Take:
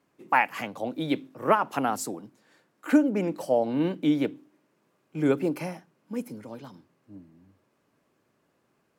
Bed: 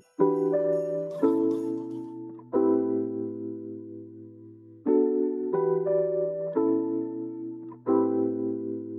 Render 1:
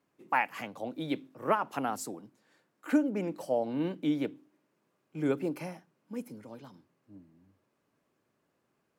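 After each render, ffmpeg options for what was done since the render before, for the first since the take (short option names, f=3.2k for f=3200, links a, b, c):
-af "volume=-6dB"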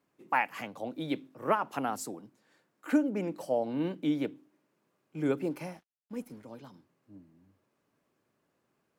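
-filter_complex "[0:a]asettb=1/sr,asplit=3[a][b][c];[a]atrim=end=5.504[d];[b]atrim=start=5.5:end=6.44,asetpts=PTS-STARTPTS,afade=t=in:d=0.004:c=qsin,afade=t=out:st=0.936:d=0.004:c=qsin,aeval=exprs='sgn(val(0))*max(abs(val(0))-0.00106,0)':c=same[e];[c]atrim=start=6.436[f];[d][e]acrossfade=d=0.004:c1=hsin:c2=qsin[g];[g][f]acrossfade=d=0.004:c1=qsin:c2=hsin"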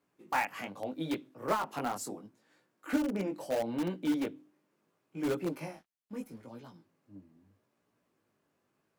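-filter_complex "[0:a]flanger=delay=16.5:depth=4.2:speed=0.76,asplit=2[a][b];[b]aeval=exprs='(mod(25.1*val(0)+1,2)-1)/25.1':c=same,volume=-11dB[c];[a][c]amix=inputs=2:normalize=0"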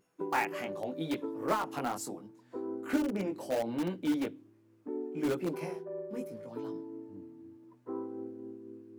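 -filter_complex "[1:a]volume=-15.5dB[a];[0:a][a]amix=inputs=2:normalize=0"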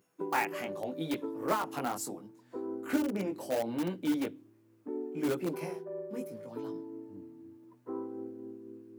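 -af "highpass=60,highshelf=f=10k:g=7"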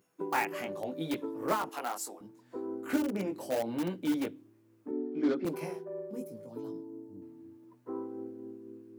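-filter_complex "[0:a]asettb=1/sr,asplit=3[a][b][c];[a]atrim=end=1.694[d];[b]atrim=start=1.69:end=2.21,asetpts=PTS-STARTPTS,afade=t=in:d=0.004:c=qsin,afade=t=out:st=0.516:d=0.004:c=qsin,highpass=500[e];[c]atrim=start=2.206[f];[d][e]acrossfade=d=0.004:c1=hsin:c2=qsin[g];[g][f]acrossfade=d=0.004:c1=qsin:c2=hsin,asettb=1/sr,asplit=3[h][i][j];[h]atrim=end=4.914[k];[i]atrim=start=4.91:end=5.45,asetpts=PTS-STARTPTS,afade=t=in:d=0.004:c=qsin,afade=t=out:st=0.536:d=0.004:c=qsin,highpass=f=190:w=0.5412,highpass=f=190:w=1.3066,equalizer=f=260:t=q:w=4:g=8,equalizer=f=900:t=q:w=4:g=-5,equalizer=f=2.7k:t=q:w=4:g=-9,lowpass=f=4.7k:w=0.5412,lowpass=f=4.7k:w=1.3066[l];[j]atrim=start=5.446[m];[k][l]acrossfade=d=0.004:c1=hsin:c2=qsin[n];[n][m]acrossfade=d=0.004:c1=qsin:c2=hsin,asettb=1/sr,asplit=3[o][p][q];[o]atrim=end=6.114[r];[p]atrim=start=6.11:end=7.22,asetpts=PTS-STARTPTS,afade=t=in:d=0.004:c=qsin,afade=t=out:st=1.106:d=0.004:c=qsin,equalizer=f=1.9k:t=o:w=2.1:g=-10[s];[q]atrim=start=7.216[t];[r][s]acrossfade=d=0.004:c1=hsin:c2=qsin[u];[u][t]acrossfade=d=0.004:c1=qsin:c2=hsin"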